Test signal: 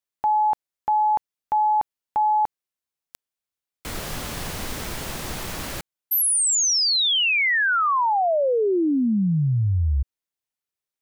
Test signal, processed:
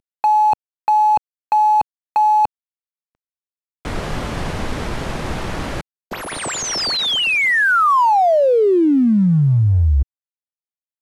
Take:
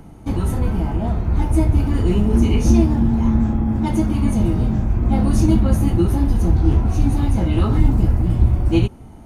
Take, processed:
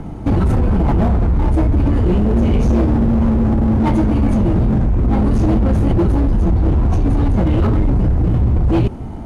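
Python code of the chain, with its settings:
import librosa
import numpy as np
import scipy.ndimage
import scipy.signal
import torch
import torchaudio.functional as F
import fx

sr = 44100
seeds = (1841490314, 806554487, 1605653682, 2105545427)

p1 = fx.cvsd(x, sr, bps=64000)
p2 = fx.lowpass(p1, sr, hz=1500.0, slope=6)
p3 = fx.over_compress(p2, sr, threshold_db=-22.0, ratio=-0.5)
p4 = p2 + (p3 * 10.0 ** (-2.0 / 20.0))
p5 = np.clip(10.0 ** (14.0 / 20.0) * p4, -1.0, 1.0) / 10.0 ** (14.0 / 20.0)
y = p5 * 10.0 ** (3.5 / 20.0)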